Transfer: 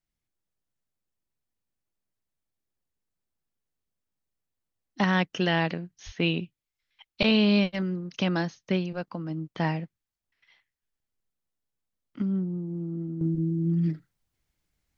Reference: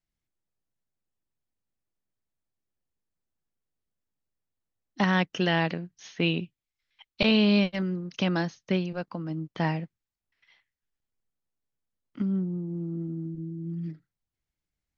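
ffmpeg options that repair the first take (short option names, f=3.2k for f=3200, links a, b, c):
-filter_complex "[0:a]asplit=3[a][b][c];[a]afade=t=out:st=6.05:d=0.02[d];[b]highpass=f=140:w=0.5412,highpass=f=140:w=1.3066,afade=t=in:st=6.05:d=0.02,afade=t=out:st=6.17:d=0.02[e];[c]afade=t=in:st=6.17:d=0.02[f];[d][e][f]amix=inputs=3:normalize=0,asetnsamples=n=441:p=0,asendcmd='13.21 volume volume -9dB',volume=0dB"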